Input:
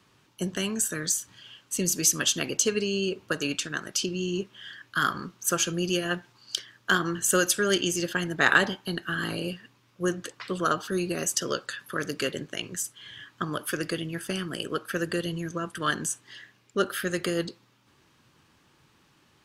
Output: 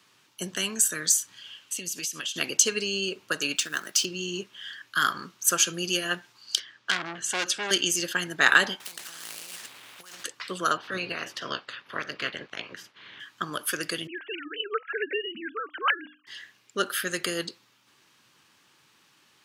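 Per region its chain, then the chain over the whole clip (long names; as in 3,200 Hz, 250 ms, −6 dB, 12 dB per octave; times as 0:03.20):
0:01.61–0:02.36: parametric band 2,900 Hz +7.5 dB 0.75 octaves + downward compressor 20 to 1, threshold −31 dBFS
0:03.56–0:04.05: high-pass filter 160 Hz + floating-point word with a short mantissa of 2 bits
0:06.60–0:07.71: band-pass filter 100–4,600 Hz + saturating transformer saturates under 3,800 Hz
0:08.80–0:10.24: running median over 9 samples + compressor whose output falls as the input rises −39 dBFS + every bin compressed towards the loudest bin 4 to 1
0:10.76–0:13.19: ceiling on every frequency bin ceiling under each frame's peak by 18 dB + high-frequency loss of the air 310 metres
0:14.07–0:16.27: three sine waves on the formant tracks + mains-hum notches 50/100/150/200/250/300 Hz
whole clip: Bessel high-pass filter 160 Hz; tilt shelving filter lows −5 dB, about 1,100 Hz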